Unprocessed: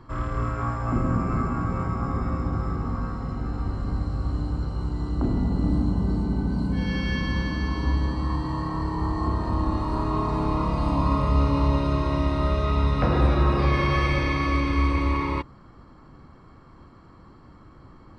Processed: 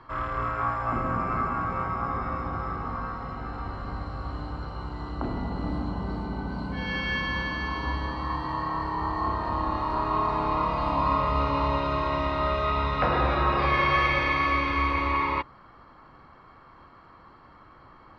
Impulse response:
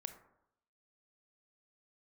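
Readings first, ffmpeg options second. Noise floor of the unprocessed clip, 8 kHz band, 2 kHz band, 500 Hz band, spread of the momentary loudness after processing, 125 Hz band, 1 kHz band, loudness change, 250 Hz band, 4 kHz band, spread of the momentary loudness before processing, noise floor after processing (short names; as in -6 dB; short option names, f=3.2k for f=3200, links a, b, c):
-50 dBFS, n/a, +4.0 dB, -1.0 dB, 12 LU, -8.5 dB, +4.0 dB, -2.0 dB, -7.0 dB, +1.5 dB, 7 LU, -52 dBFS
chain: -filter_complex "[0:a]acrossover=split=560 4200:gain=0.224 1 0.1[a][b][c];[a][b][c]amix=inputs=3:normalize=0,volume=4.5dB"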